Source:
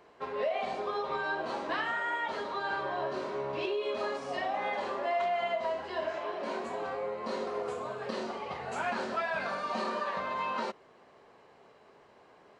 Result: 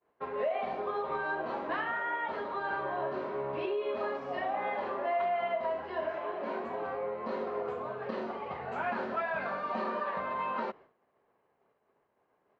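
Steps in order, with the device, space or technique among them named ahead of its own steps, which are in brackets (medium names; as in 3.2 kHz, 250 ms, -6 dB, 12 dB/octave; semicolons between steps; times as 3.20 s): hearing-loss simulation (low-pass 2.2 kHz 12 dB/octave; expander -48 dBFS)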